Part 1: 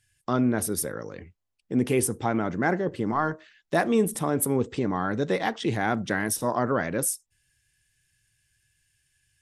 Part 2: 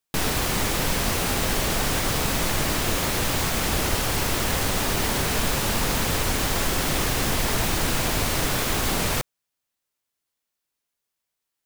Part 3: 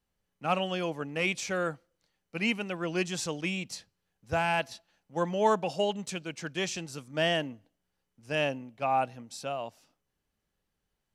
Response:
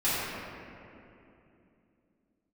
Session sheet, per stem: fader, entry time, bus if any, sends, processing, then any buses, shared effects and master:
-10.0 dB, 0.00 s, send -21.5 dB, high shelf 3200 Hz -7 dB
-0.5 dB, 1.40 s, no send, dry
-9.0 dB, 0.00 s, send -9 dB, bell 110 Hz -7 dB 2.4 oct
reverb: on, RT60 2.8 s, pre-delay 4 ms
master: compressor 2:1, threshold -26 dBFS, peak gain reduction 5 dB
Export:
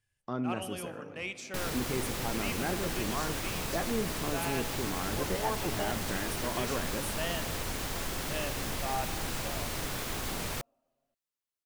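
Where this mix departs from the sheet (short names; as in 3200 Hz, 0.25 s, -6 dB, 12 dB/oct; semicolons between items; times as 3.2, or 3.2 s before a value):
stem 2 -0.5 dB -> -11.5 dB; stem 3: send -9 dB -> -16.5 dB; reverb return -6.5 dB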